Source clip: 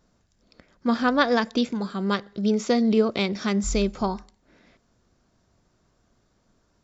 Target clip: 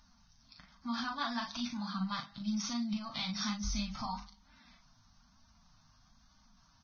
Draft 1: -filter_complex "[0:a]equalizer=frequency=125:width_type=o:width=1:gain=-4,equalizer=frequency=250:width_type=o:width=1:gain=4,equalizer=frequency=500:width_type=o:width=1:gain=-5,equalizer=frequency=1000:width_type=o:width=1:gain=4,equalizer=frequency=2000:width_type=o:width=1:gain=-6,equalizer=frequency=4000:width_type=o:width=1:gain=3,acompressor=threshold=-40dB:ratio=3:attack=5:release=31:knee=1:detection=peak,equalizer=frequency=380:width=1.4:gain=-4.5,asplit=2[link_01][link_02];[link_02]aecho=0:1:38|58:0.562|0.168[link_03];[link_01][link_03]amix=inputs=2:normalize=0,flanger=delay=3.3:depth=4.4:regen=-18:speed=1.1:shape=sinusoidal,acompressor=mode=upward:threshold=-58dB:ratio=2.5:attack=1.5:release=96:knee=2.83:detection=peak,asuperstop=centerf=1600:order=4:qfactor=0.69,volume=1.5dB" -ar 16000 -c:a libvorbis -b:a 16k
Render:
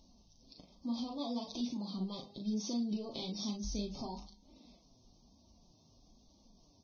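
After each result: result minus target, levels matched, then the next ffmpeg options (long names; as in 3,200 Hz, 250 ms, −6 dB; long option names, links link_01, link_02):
2,000 Hz band −19.0 dB; downward compressor: peak gain reduction +4.5 dB
-filter_complex "[0:a]equalizer=frequency=125:width_type=o:width=1:gain=-4,equalizer=frequency=250:width_type=o:width=1:gain=4,equalizer=frequency=500:width_type=o:width=1:gain=-5,equalizer=frequency=1000:width_type=o:width=1:gain=4,equalizer=frequency=2000:width_type=o:width=1:gain=-6,equalizer=frequency=4000:width_type=o:width=1:gain=3,acompressor=threshold=-40dB:ratio=3:attack=5:release=31:knee=1:detection=peak,equalizer=frequency=380:width=1.4:gain=-4.5,asplit=2[link_01][link_02];[link_02]aecho=0:1:38|58:0.562|0.168[link_03];[link_01][link_03]amix=inputs=2:normalize=0,flanger=delay=3.3:depth=4.4:regen=-18:speed=1.1:shape=sinusoidal,acompressor=mode=upward:threshold=-58dB:ratio=2.5:attack=1.5:release=96:knee=2.83:detection=peak,asuperstop=centerf=410:order=4:qfactor=0.69,volume=1.5dB" -ar 16000 -c:a libvorbis -b:a 16k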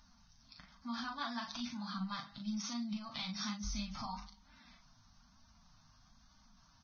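downward compressor: peak gain reduction +4.5 dB
-filter_complex "[0:a]equalizer=frequency=125:width_type=o:width=1:gain=-4,equalizer=frequency=250:width_type=o:width=1:gain=4,equalizer=frequency=500:width_type=o:width=1:gain=-5,equalizer=frequency=1000:width_type=o:width=1:gain=4,equalizer=frequency=2000:width_type=o:width=1:gain=-6,equalizer=frequency=4000:width_type=o:width=1:gain=3,acompressor=threshold=-33.5dB:ratio=3:attack=5:release=31:knee=1:detection=peak,equalizer=frequency=380:width=1.4:gain=-4.5,asplit=2[link_01][link_02];[link_02]aecho=0:1:38|58:0.562|0.168[link_03];[link_01][link_03]amix=inputs=2:normalize=0,flanger=delay=3.3:depth=4.4:regen=-18:speed=1.1:shape=sinusoidal,acompressor=mode=upward:threshold=-58dB:ratio=2.5:attack=1.5:release=96:knee=2.83:detection=peak,asuperstop=centerf=410:order=4:qfactor=0.69,volume=1.5dB" -ar 16000 -c:a libvorbis -b:a 16k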